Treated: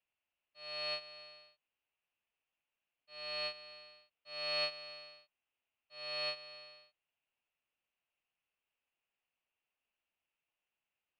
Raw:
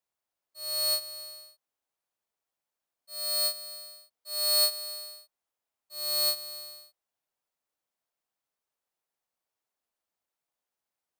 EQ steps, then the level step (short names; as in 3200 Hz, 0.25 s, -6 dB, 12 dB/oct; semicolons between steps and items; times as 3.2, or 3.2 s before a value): ladder low-pass 2900 Hz, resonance 75%; low shelf 140 Hz +6 dB; +7.0 dB